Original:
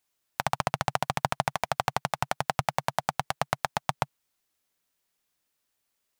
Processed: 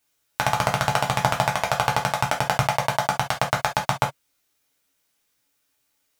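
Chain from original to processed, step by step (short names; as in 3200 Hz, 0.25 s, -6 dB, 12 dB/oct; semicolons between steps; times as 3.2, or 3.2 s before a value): non-linear reverb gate 90 ms falling, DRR -1.5 dB; gain +3.5 dB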